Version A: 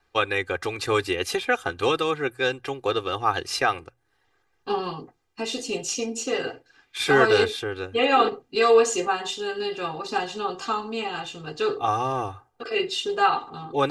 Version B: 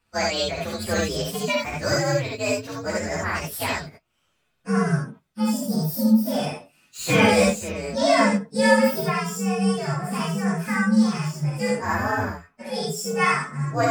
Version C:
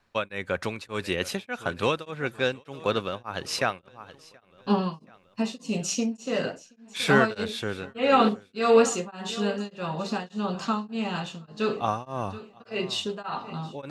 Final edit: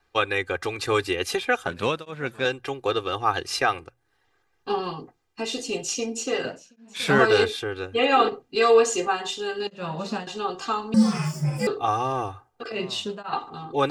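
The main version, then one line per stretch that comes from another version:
A
1.67–2.45 s: from C
6.45–7.19 s: from C
9.67–10.27 s: from C
10.94–11.67 s: from B
12.72–13.33 s: from C

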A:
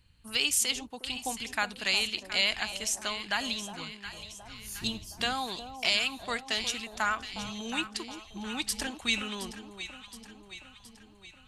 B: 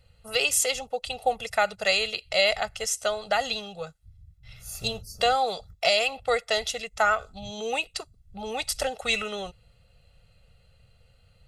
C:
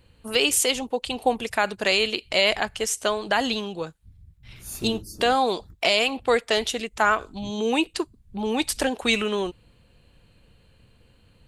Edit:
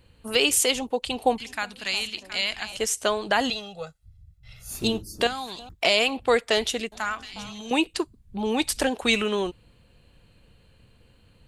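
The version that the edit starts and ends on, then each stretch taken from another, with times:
C
1.38–2.77 s: from A
3.50–4.70 s: from B
5.27–5.69 s: from A
6.92–7.71 s: from A

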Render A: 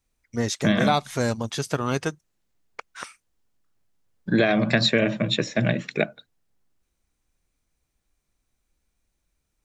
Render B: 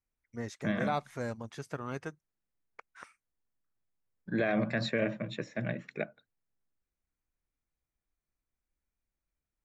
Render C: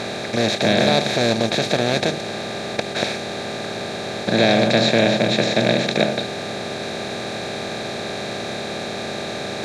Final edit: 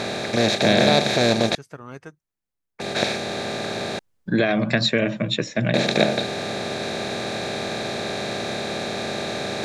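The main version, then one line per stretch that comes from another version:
C
1.55–2.80 s: from B
3.99–5.74 s: from A

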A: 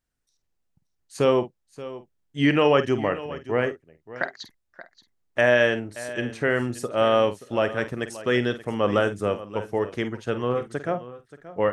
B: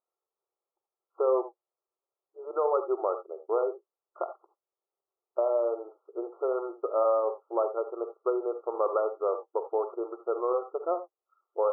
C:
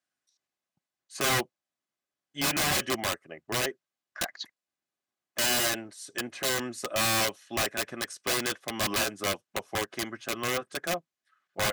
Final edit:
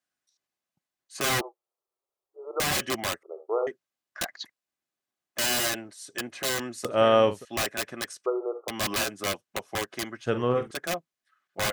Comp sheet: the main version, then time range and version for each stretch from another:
C
1.41–2.60 s: from B
3.23–3.67 s: from B
6.85–7.45 s: from A
8.26–8.68 s: from B
10.26–10.71 s: from A

